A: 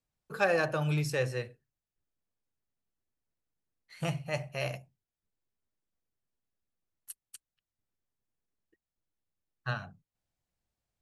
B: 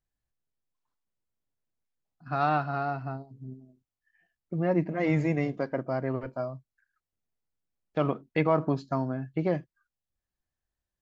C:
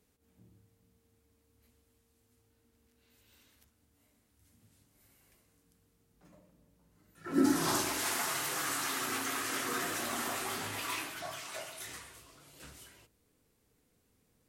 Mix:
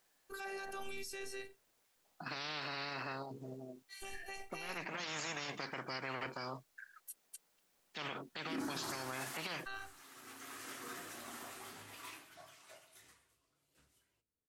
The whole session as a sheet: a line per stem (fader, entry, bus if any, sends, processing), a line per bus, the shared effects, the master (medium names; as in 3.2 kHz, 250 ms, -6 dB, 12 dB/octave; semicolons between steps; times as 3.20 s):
-3.0 dB, 0.00 s, no send, treble shelf 2.6 kHz +11 dB; robot voice 391 Hz
-6.0 dB, 0.00 s, no send, high-pass 390 Hz 12 dB/octave; spectrum-flattening compressor 10:1
-6.5 dB, 1.15 s, no send, upward expansion 1.5:1, over -56 dBFS; auto duck -13 dB, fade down 0.30 s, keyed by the first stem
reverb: none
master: peak limiter -31.5 dBFS, peak gain reduction 18.5 dB